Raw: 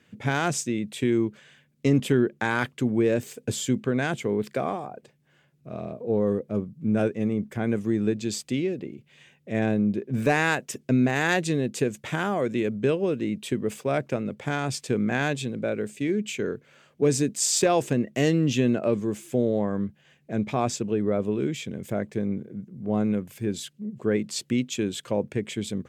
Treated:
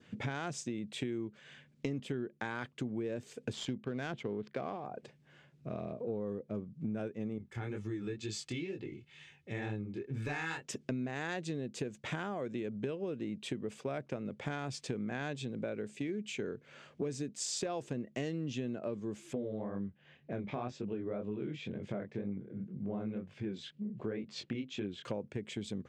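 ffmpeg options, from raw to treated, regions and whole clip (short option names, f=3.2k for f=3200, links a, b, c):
-filter_complex "[0:a]asettb=1/sr,asplit=3[a][b][c];[a]atrim=end=3.534[d];[b]atrim=start=3.53:end=4.86,asetpts=PTS-STARTPTS,afade=t=in:d=0.004:c=qsin,afade=t=out:st=1.326:d=0.004:c=qsin,equalizer=f=3.5k:w=1.5:g=3,adynamicsmooth=sensitivity=6.5:basefreq=2k[e];[c]atrim=start=4.856[f];[d][e]acrossfade=d=0.004:c1=hsin:c2=qsin[g];[g][f]acrossfade=d=0.004:c1=qsin:c2=hsin,asettb=1/sr,asplit=3[h][i][j];[h]atrim=end=7.384[k];[i]atrim=start=7.38:end=10.65,asetpts=PTS-STARTPTS,afade=t=in:d=0.004:c=qsin,afade=t=out:st=3.266:d=0.004:c=qsin,equalizer=f=500:w=1.4:g=-10.5,aecho=1:1:2.3:0.6,atrim=end_sample=144207,flanger=delay=18.5:depth=6.7:speed=2.1[l];[j]atrim=start=10.646[m];[k][l]acrossfade=d=0.004:c1=hsin:c2=qsin[n];[n][m]acrossfade=d=0.004:c1=qsin:c2=hsin,asettb=1/sr,asplit=3[o][p][q];[o]atrim=end=19.334[r];[p]atrim=start=19.33:end=25.05,asetpts=PTS-STARTPTS,afade=t=in:d=0.004:c=qsin,afade=t=out:st=5.716:d=0.004:c=qsin,lowpass=3.7k,flanger=delay=19.5:depth=7.6:speed=2[s];[q]atrim=start=25.046[t];[r][s]acrossfade=d=0.004:c1=hsin:c2=qsin[u];[u][t]acrossfade=d=0.004:c1=qsin:c2=hsin,lowpass=6.2k,adynamicequalizer=threshold=0.00501:dfrequency=2200:dqfactor=1.7:tfrequency=2200:tqfactor=1.7:attack=5:release=100:ratio=0.375:range=2:mode=cutabove:tftype=bell,acompressor=threshold=-38dB:ratio=5,volume=1.5dB"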